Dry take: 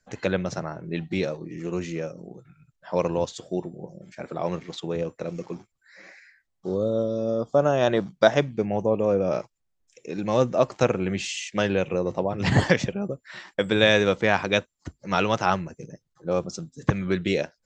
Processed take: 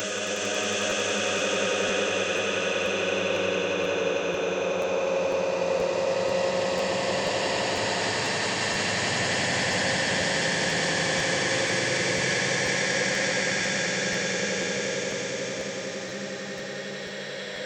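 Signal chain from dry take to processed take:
extreme stretch with random phases 10×, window 1.00 s, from 0:11.59
brickwall limiter −16.5 dBFS, peak gain reduction 8 dB
RIAA equalisation recording
on a send: echo that builds up and dies away 91 ms, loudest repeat 5, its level −6 dB
on the sum: regular buffer underruns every 0.49 s, samples 512, repeat, from 0:00.89
level −3 dB

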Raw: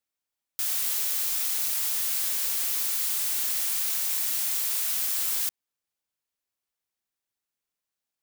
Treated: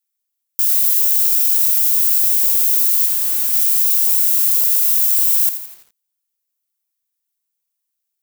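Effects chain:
RIAA equalisation recording
0:03.06–0:03.53: power curve on the samples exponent 1.4
feedback echo at a low word length 84 ms, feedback 55%, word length 5 bits, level −10 dB
level −5 dB

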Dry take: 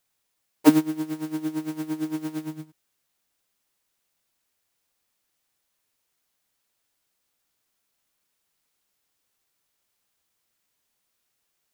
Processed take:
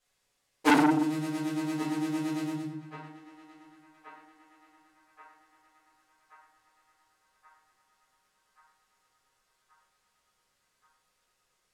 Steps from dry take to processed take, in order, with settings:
low-pass filter 9,300 Hz 12 dB per octave
feedback echo with a band-pass in the loop 1,129 ms, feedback 73%, band-pass 1,300 Hz, level −15 dB
rectangular room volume 82 cubic metres, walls mixed, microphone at 2 metres
saturating transformer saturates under 1,600 Hz
level −5 dB

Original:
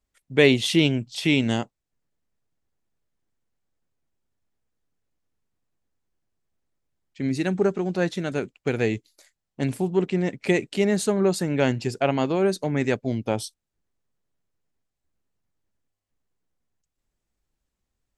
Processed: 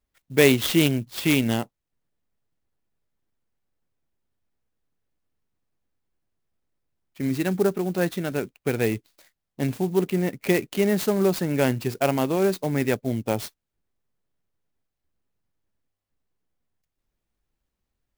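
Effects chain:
converter with an unsteady clock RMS 0.034 ms

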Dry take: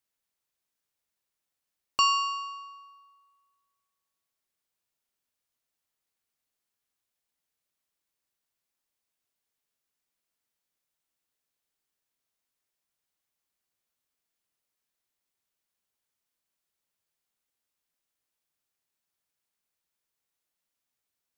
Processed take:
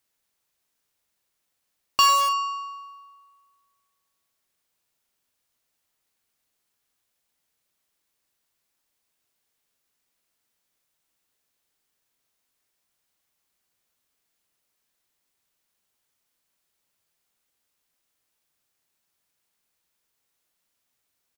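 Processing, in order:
in parallel at −8 dB: wrap-around overflow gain 24.5 dB
on the sum: double-tracking delay 43 ms −13 dB
level +5 dB

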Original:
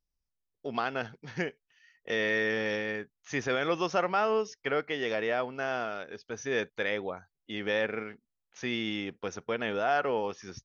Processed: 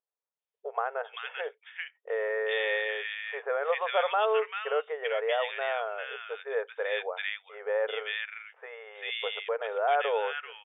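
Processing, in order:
linear-phase brick-wall band-pass 410–3,700 Hz
multiband delay without the direct sound lows, highs 390 ms, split 1,600 Hz
level +2.5 dB

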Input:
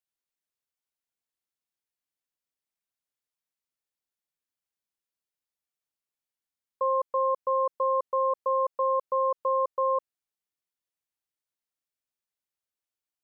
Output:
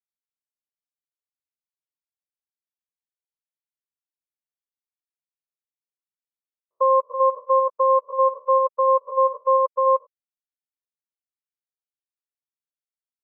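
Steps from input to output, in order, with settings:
spectrum averaged block by block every 100 ms
expander for the loud parts 2.5 to 1, over −40 dBFS
level +9 dB

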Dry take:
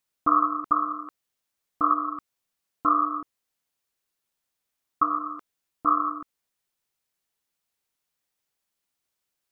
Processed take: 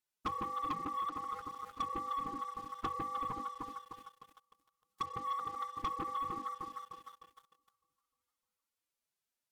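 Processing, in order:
mains-hum notches 50/100/150/200/250/300/350/400/450 Hz
treble cut that deepens with the level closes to 410 Hz, closed at −23.5 dBFS
delay that swaps between a low-pass and a high-pass 152 ms, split 1,000 Hz, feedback 71%, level −8 dB
phase-vocoder pitch shift with formants kept +9 semitones
downward compressor 3 to 1, threshold −44 dBFS, peak gain reduction 15 dB
leveller curve on the samples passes 3
level −1 dB

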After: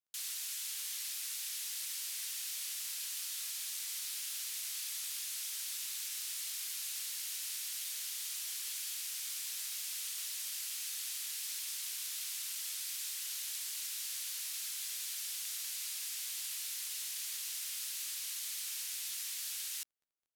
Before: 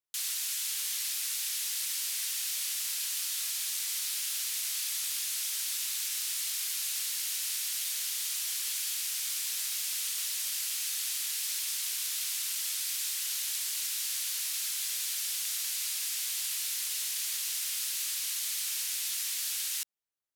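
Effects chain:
surface crackle 12 per second −58 dBFS
level −7 dB

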